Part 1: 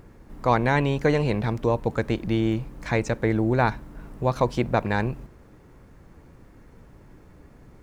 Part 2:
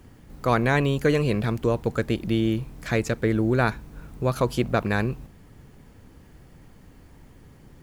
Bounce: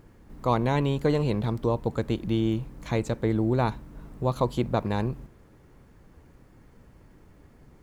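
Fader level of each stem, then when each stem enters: −5.0, −11.0 decibels; 0.00, 0.00 seconds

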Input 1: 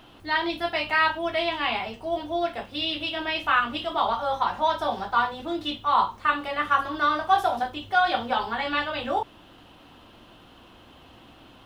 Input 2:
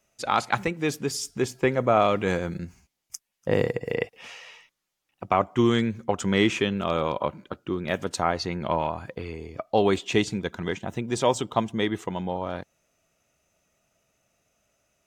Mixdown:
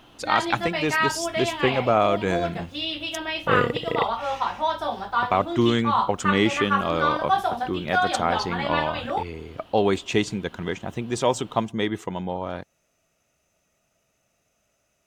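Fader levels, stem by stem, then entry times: −1.0, +0.5 decibels; 0.00, 0.00 seconds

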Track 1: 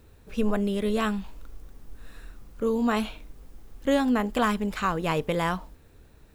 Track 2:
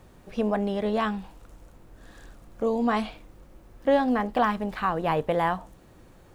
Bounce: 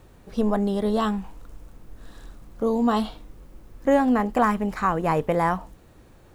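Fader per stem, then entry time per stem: −3.5, −0.5 decibels; 0.00, 0.00 seconds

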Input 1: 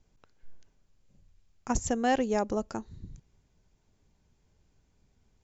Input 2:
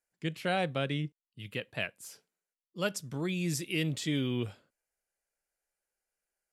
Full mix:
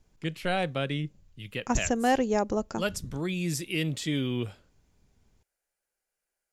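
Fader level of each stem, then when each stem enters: +2.0, +2.0 decibels; 0.00, 0.00 seconds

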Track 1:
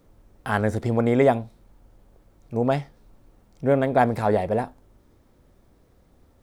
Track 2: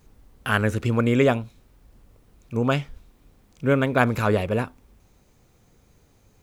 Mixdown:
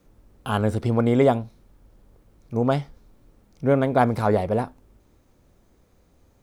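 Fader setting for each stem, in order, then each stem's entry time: −2.5, −7.5 decibels; 0.00, 0.00 seconds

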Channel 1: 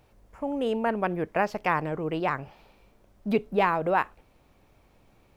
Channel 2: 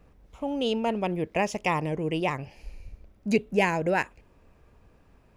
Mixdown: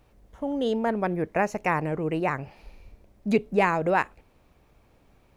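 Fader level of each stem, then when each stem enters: −1.5, −6.5 decibels; 0.00, 0.00 seconds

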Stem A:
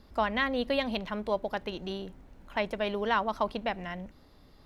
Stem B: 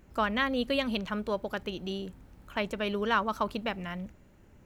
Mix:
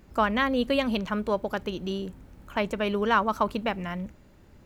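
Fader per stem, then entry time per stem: −8.0, +3.0 decibels; 0.00, 0.00 seconds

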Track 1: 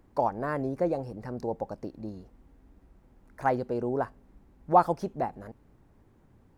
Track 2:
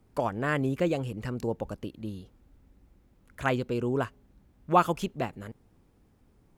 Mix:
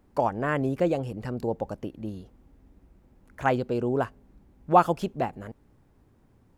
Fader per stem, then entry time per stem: −2.0, −4.0 decibels; 0.00, 0.00 seconds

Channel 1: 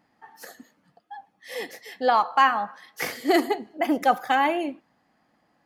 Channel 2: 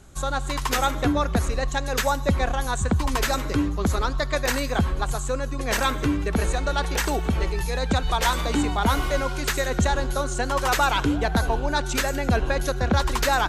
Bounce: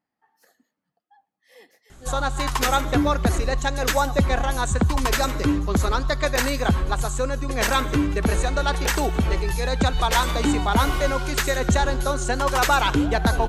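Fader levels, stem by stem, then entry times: −17.0, +2.0 decibels; 0.00, 1.90 seconds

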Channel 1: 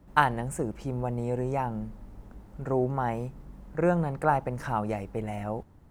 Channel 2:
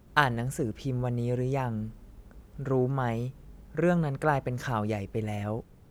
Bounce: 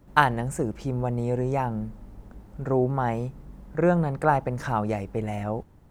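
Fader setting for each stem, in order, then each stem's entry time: +0.5, −7.0 decibels; 0.00, 0.00 seconds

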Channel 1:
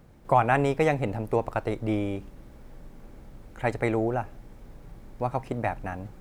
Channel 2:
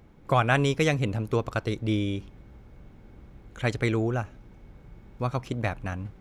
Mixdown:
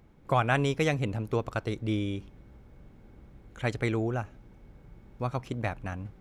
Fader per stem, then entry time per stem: −18.0, −4.5 decibels; 0.00, 0.00 seconds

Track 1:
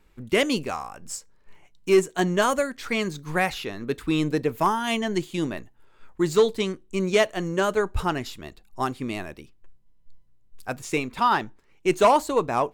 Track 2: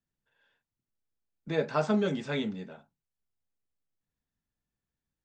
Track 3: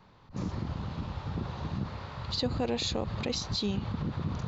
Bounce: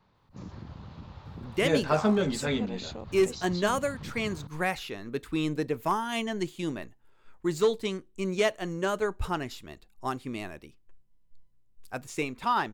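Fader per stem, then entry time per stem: −5.5, +2.5, −8.5 decibels; 1.25, 0.15, 0.00 seconds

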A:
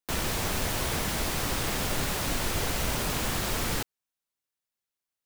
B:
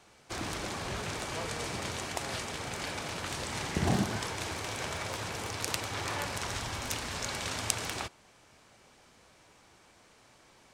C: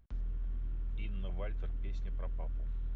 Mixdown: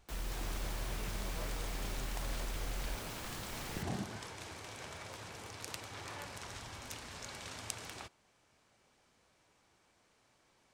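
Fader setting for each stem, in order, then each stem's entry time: −16.0, −11.0, −4.0 decibels; 0.00, 0.00, 0.00 seconds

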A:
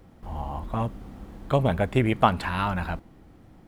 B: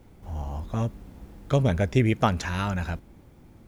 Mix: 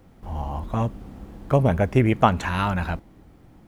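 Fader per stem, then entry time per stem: −0.5, −5.0 decibels; 0.00, 0.00 seconds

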